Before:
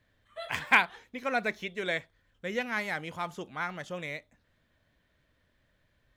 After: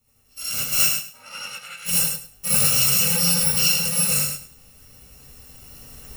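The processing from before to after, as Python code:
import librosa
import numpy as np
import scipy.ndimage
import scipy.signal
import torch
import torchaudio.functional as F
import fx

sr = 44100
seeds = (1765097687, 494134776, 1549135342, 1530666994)

y = fx.bit_reversed(x, sr, seeds[0], block=128)
y = fx.recorder_agc(y, sr, target_db=-13.5, rise_db_per_s=6.0, max_gain_db=30)
y = 10.0 ** (-16.5 / 20.0) * np.tanh(y / 10.0 ** (-16.5 / 20.0))
y = fx.bandpass_q(y, sr, hz=fx.line((0.83, 660.0), (1.85, 2400.0)), q=1.3, at=(0.83, 1.85), fade=0.02)
y = fx.echo_feedback(y, sr, ms=103, feedback_pct=21, wet_db=-6.0)
y = fx.rev_gated(y, sr, seeds[1], gate_ms=100, shape='rising', drr_db=-7.5)
y = fx.env_flatten(y, sr, amount_pct=50, at=(2.5, 3.72))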